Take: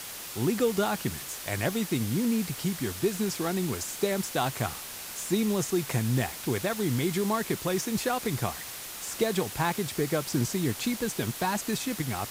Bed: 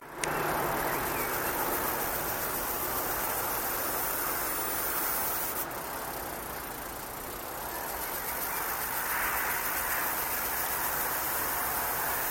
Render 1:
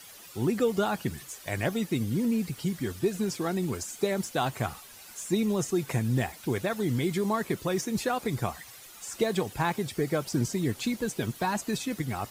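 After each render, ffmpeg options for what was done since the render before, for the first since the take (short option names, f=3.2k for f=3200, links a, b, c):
-af "afftdn=nr=12:nf=-40"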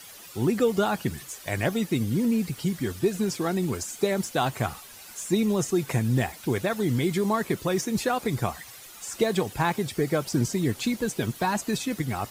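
-af "volume=3dB"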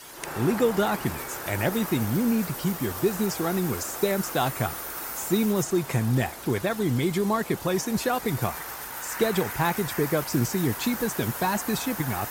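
-filter_complex "[1:a]volume=-4.5dB[a];[0:a][a]amix=inputs=2:normalize=0"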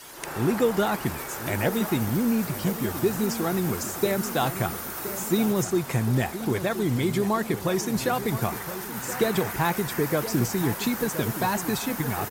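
-filter_complex "[0:a]asplit=2[a][b];[b]adelay=1021,lowpass=f=2k:p=1,volume=-11.5dB,asplit=2[c][d];[d]adelay=1021,lowpass=f=2k:p=1,volume=0.54,asplit=2[e][f];[f]adelay=1021,lowpass=f=2k:p=1,volume=0.54,asplit=2[g][h];[h]adelay=1021,lowpass=f=2k:p=1,volume=0.54,asplit=2[i][j];[j]adelay=1021,lowpass=f=2k:p=1,volume=0.54,asplit=2[k][l];[l]adelay=1021,lowpass=f=2k:p=1,volume=0.54[m];[a][c][e][g][i][k][m]amix=inputs=7:normalize=0"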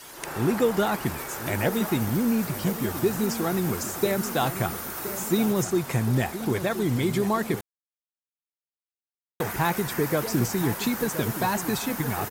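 -filter_complex "[0:a]asplit=3[a][b][c];[a]atrim=end=7.61,asetpts=PTS-STARTPTS,afade=t=out:st=7.606:d=0.004:c=hsin[d];[b]atrim=start=7.61:end=9.4,asetpts=PTS-STARTPTS,volume=0[e];[c]atrim=start=9.4,asetpts=PTS-STARTPTS,afade=t=in:d=0.004:c=hsin[f];[d][e][f]concat=n=3:v=0:a=1"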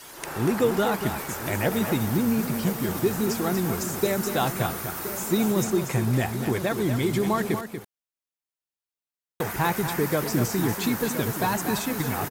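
-af "aecho=1:1:238:0.376"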